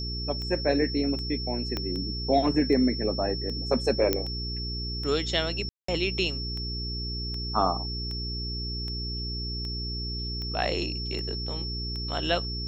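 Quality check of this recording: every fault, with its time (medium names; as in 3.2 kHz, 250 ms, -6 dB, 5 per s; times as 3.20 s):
hum 60 Hz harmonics 7 -34 dBFS
tick 78 rpm -25 dBFS
whine 5.4 kHz -34 dBFS
1.77 s: pop -16 dBFS
4.13 s: pop -9 dBFS
5.69–5.88 s: dropout 194 ms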